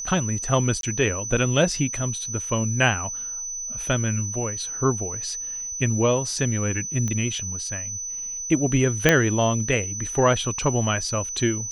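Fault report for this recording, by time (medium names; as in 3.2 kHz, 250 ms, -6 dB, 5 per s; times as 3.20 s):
whine 6 kHz -29 dBFS
0.81–0.83 s: dropout 22 ms
7.08 s: pop -16 dBFS
9.09 s: pop -1 dBFS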